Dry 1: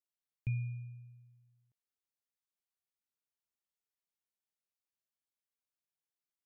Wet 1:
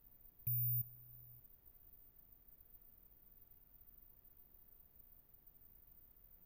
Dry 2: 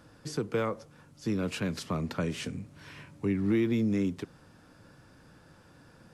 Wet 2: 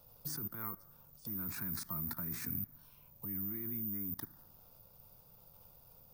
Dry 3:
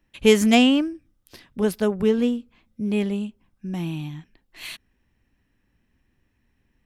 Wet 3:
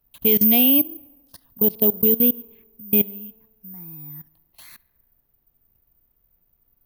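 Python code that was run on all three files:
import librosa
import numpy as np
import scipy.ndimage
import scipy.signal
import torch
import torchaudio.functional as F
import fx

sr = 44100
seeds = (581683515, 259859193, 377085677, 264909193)

p1 = scipy.signal.sosfilt(scipy.signal.butter(2, 56.0, 'highpass', fs=sr, output='sos'), x)
p2 = fx.high_shelf(p1, sr, hz=9700.0, db=3.5)
p3 = fx.level_steps(p2, sr, step_db=22)
p4 = fx.env_phaser(p3, sr, low_hz=280.0, high_hz=1500.0, full_db=-32.0)
p5 = fx.dmg_noise_colour(p4, sr, seeds[0], colour='brown', level_db=-72.0)
p6 = p5 + fx.echo_tape(p5, sr, ms=71, feedback_pct=75, wet_db=-23.5, lp_hz=3300.0, drive_db=16.0, wow_cents=27, dry=0)
p7 = (np.kron(scipy.signal.resample_poly(p6, 1, 3), np.eye(3)[0]) * 3)[:len(p6)]
y = p7 * librosa.db_to_amplitude(3.0)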